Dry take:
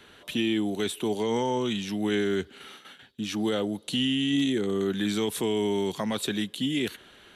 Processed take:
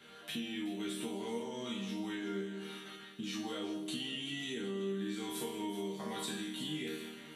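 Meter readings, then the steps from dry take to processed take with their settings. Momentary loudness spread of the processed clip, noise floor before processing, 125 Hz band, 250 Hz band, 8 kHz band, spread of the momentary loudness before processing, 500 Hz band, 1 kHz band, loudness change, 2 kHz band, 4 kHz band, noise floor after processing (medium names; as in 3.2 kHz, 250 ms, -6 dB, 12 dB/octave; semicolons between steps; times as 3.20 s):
5 LU, -54 dBFS, -12.0 dB, -12.0 dB, -8.0 dB, 9 LU, -13.0 dB, -11.0 dB, -12.0 dB, -9.5 dB, -10.0 dB, -53 dBFS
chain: spectral sustain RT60 0.35 s; chord resonator D#3 major, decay 0.61 s; compression 5:1, threshold -54 dBFS, peak gain reduction 17 dB; high-pass 58 Hz; echo whose repeats swap between lows and highs 189 ms, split 1.3 kHz, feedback 66%, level -9.5 dB; trim +16 dB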